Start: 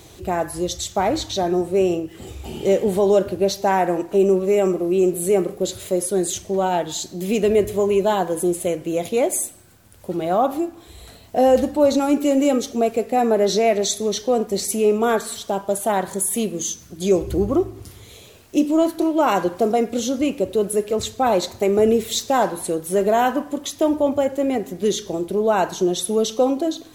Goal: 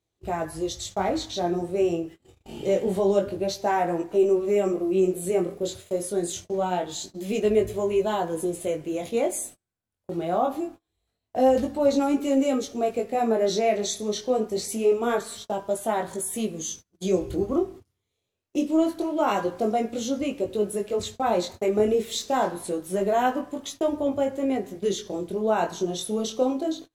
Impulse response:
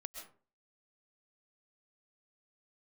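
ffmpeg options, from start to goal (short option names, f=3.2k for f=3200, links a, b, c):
-af "flanger=delay=18:depth=5.9:speed=0.25,agate=range=-31dB:threshold=-36dB:ratio=16:detection=peak,highshelf=f=12k:g=-8.5,volume=-2.5dB"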